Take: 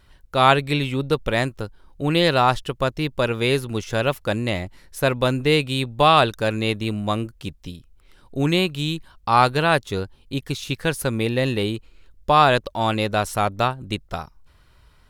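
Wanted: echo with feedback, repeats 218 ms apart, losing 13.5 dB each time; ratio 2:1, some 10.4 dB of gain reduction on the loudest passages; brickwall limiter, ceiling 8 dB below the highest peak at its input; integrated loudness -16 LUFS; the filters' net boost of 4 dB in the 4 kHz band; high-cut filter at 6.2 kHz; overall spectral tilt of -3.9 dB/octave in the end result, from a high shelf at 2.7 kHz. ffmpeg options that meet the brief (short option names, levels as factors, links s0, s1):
-af "lowpass=6200,highshelf=f=2700:g=3,equalizer=f=4000:t=o:g=3,acompressor=threshold=0.0398:ratio=2,alimiter=limit=0.119:level=0:latency=1,aecho=1:1:218|436:0.211|0.0444,volume=5.96"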